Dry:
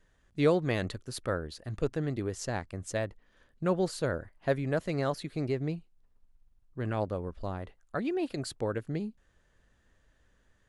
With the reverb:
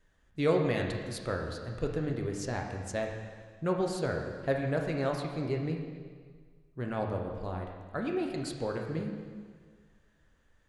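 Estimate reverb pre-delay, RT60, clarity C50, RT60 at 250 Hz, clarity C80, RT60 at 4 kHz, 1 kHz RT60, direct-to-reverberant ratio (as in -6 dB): 6 ms, 1.7 s, 3.5 dB, 1.6 s, 5.5 dB, 1.6 s, 1.7 s, 1.0 dB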